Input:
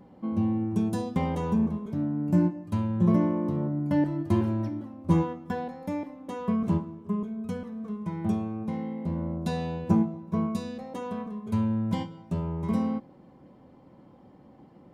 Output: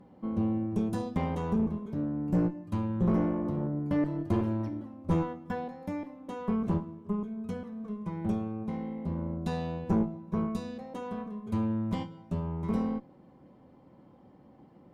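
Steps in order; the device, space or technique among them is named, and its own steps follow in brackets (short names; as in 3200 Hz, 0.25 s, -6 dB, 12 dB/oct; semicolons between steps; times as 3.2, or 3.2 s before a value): tube preamp driven hard (tube stage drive 19 dB, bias 0.6; high shelf 5200 Hz -4.5 dB)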